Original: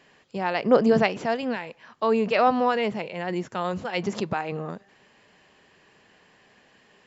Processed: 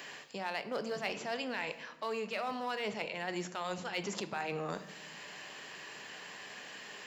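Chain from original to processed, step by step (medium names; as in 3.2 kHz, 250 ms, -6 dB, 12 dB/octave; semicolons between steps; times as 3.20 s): in parallel at -9 dB: hard clipper -23 dBFS, distortion -6 dB; on the sum: high-pass 82 Hz; tilt EQ +3 dB/octave; reverse; compression 6:1, threshold -35 dBFS, peak gain reduction 19.5 dB; reverse; simulated room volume 230 m³, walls mixed, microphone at 0.35 m; three bands compressed up and down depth 40%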